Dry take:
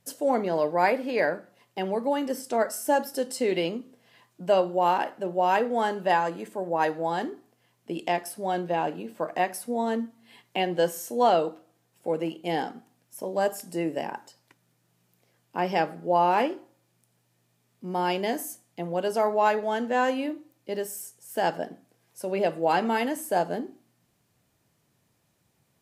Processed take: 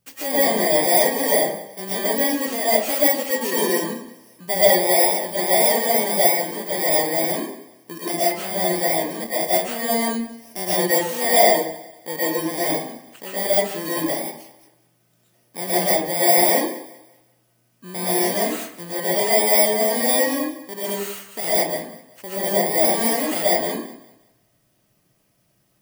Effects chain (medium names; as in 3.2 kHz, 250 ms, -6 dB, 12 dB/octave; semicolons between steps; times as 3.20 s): bit-reversed sample order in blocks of 32 samples; 22.22–22.82 s: peaking EQ 3.1 kHz -4 dB 2.9 oct; on a send: thinning echo 188 ms, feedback 33%, high-pass 160 Hz, level -18 dB; on the sum: algorithmic reverb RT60 0.53 s, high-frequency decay 0.45×, pre-delay 85 ms, DRR -9.5 dB; trim -3 dB